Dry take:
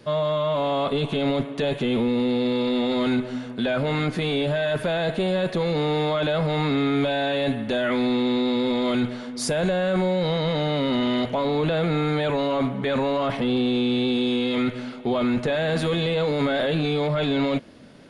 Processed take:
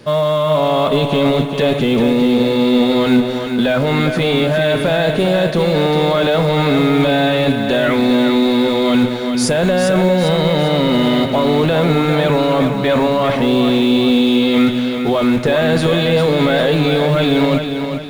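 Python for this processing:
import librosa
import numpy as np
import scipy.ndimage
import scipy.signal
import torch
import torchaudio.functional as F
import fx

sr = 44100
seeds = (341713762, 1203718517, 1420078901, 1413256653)

p1 = fx.quant_float(x, sr, bits=2)
p2 = x + F.gain(torch.from_numpy(p1), -9.0).numpy()
p3 = fx.echo_feedback(p2, sr, ms=400, feedback_pct=42, wet_db=-7)
y = F.gain(torch.from_numpy(p3), 5.5).numpy()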